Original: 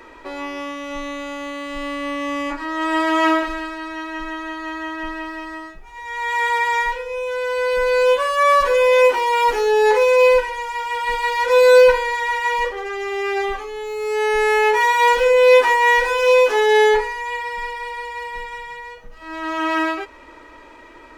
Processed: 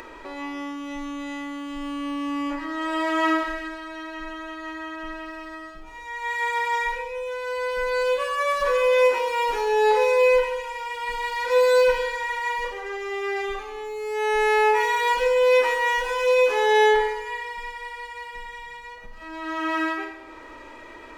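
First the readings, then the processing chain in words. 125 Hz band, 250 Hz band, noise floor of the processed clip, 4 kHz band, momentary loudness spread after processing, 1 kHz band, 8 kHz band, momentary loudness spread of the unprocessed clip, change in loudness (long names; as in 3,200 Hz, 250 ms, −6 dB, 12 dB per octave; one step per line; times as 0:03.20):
can't be measured, −3.5 dB, −42 dBFS, −5.0 dB, 18 LU, −5.5 dB, −5.5 dB, 16 LU, −5.5 dB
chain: four-comb reverb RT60 0.89 s, combs from 28 ms, DRR 4.5 dB
upward compression, threshold −27 dBFS
level −7 dB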